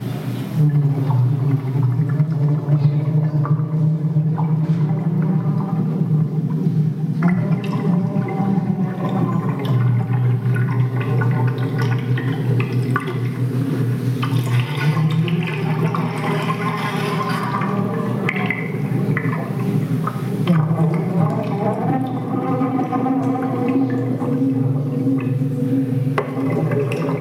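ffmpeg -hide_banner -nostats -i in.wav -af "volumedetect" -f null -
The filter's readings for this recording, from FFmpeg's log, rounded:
mean_volume: -18.5 dB
max_volume: -5.5 dB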